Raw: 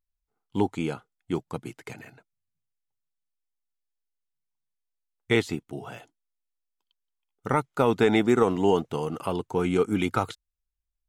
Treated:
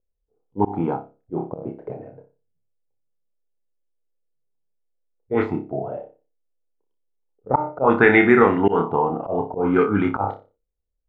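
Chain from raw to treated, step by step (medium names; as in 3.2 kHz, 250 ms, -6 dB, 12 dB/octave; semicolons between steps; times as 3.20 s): flutter echo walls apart 5.1 m, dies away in 0.33 s; slow attack 122 ms; touch-sensitive low-pass 490–1900 Hz up, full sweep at -17 dBFS; trim +4 dB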